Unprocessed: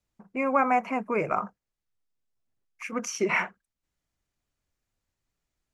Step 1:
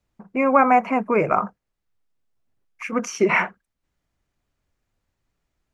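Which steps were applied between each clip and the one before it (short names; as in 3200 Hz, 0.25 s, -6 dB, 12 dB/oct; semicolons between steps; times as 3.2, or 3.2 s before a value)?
high shelf 3600 Hz -9 dB; gain +8 dB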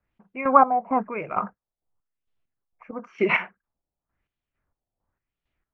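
LFO low-pass sine 0.97 Hz 700–3300 Hz; chopper 2.2 Hz, depth 65%, duty 40%; gain -4 dB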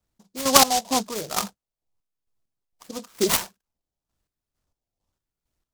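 noise-modulated delay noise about 5200 Hz, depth 0.14 ms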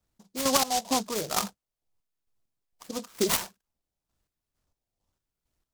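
compressor 4:1, threshold -22 dBFS, peak gain reduction 11.5 dB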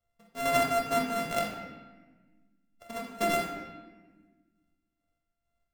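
sample sorter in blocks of 64 samples; reverb RT60 1.3 s, pre-delay 6 ms, DRR -1 dB; gain -6.5 dB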